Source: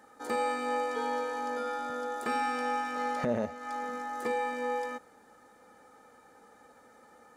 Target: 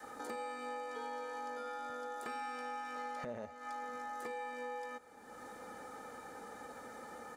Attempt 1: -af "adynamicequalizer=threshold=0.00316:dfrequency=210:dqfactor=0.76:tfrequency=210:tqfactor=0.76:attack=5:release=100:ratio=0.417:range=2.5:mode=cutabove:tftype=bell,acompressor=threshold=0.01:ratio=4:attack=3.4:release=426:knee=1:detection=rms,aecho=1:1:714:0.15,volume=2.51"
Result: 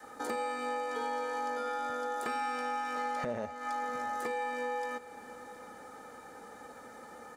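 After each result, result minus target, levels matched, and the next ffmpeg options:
compression: peak gain reduction -7.5 dB; echo-to-direct +7 dB
-af "adynamicequalizer=threshold=0.00316:dfrequency=210:dqfactor=0.76:tfrequency=210:tqfactor=0.76:attack=5:release=100:ratio=0.417:range=2.5:mode=cutabove:tftype=bell,acompressor=threshold=0.00316:ratio=4:attack=3.4:release=426:knee=1:detection=rms,aecho=1:1:714:0.15,volume=2.51"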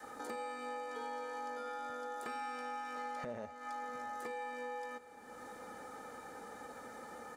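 echo-to-direct +7 dB
-af "adynamicequalizer=threshold=0.00316:dfrequency=210:dqfactor=0.76:tfrequency=210:tqfactor=0.76:attack=5:release=100:ratio=0.417:range=2.5:mode=cutabove:tftype=bell,acompressor=threshold=0.00316:ratio=4:attack=3.4:release=426:knee=1:detection=rms,aecho=1:1:714:0.0668,volume=2.51"

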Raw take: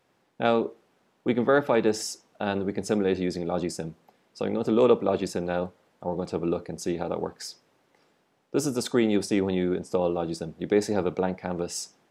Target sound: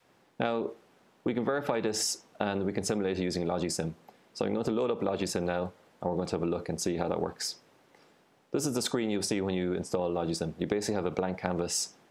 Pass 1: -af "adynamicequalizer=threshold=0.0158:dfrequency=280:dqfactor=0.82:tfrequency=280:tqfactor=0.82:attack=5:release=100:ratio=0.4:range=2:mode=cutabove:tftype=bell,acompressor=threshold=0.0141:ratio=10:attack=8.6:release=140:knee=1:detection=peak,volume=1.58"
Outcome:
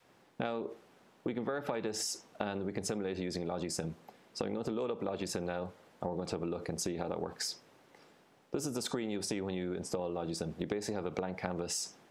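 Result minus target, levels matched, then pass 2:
compression: peak gain reduction +6.5 dB
-af "adynamicequalizer=threshold=0.0158:dfrequency=280:dqfactor=0.82:tfrequency=280:tqfactor=0.82:attack=5:release=100:ratio=0.4:range=2:mode=cutabove:tftype=bell,acompressor=threshold=0.0316:ratio=10:attack=8.6:release=140:knee=1:detection=peak,volume=1.58"

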